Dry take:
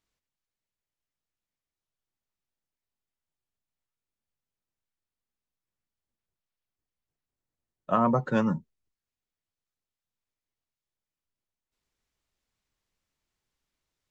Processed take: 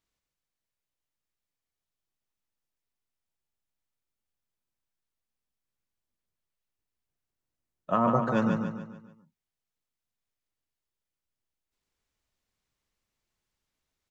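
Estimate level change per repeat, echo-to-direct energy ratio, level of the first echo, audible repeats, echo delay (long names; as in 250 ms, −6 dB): −7.0 dB, −4.0 dB, −5.0 dB, 5, 144 ms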